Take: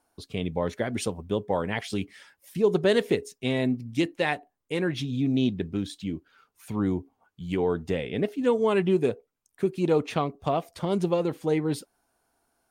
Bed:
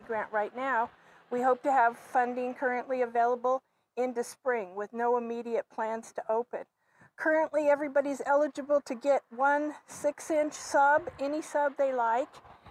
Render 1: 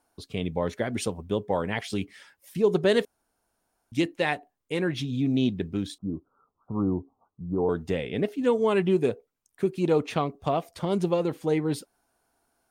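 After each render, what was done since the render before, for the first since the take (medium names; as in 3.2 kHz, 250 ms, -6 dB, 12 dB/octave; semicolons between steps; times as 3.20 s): 3.05–3.92 s: room tone; 5.98–7.69 s: steep low-pass 1.3 kHz 96 dB/octave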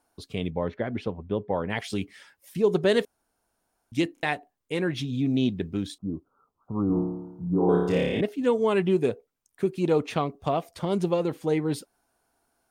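0.50–1.70 s: distance through air 350 m; 4.14 s: stutter in place 0.03 s, 3 plays; 6.87–8.21 s: flutter echo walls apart 4.8 m, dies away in 0.99 s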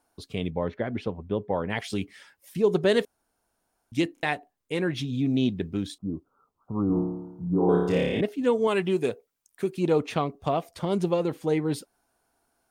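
8.67–9.77 s: tilt EQ +1.5 dB/octave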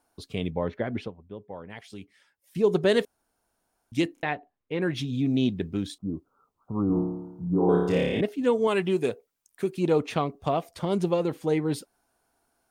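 1.05–2.57 s: dip -12.5 dB, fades 0.30 s exponential; 4.22–4.82 s: distance through air 290 m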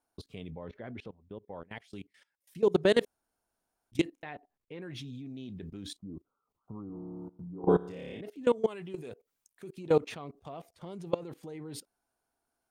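level held to a coarse grid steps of 21 dB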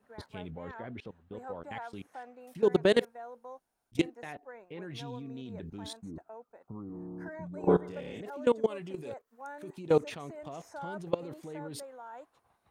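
add bed -18.5 dB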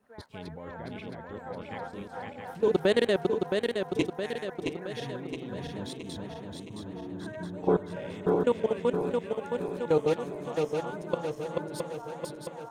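backward echo that repeats 334 ms, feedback 74%, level -2 dB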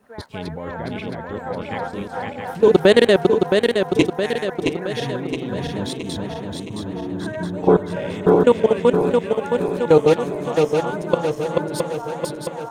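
trim +11.5 dB; peak limiter -1 dBFS, peak gain reduction 2 dB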